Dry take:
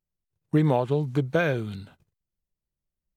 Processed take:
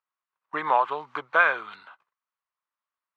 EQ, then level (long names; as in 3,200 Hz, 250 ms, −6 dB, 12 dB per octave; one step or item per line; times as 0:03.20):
high-pass with resonance 1,100 Hz, resonance Q 4
low-pass filter 2,600 Hz 12 dB per octave
+5.0 dB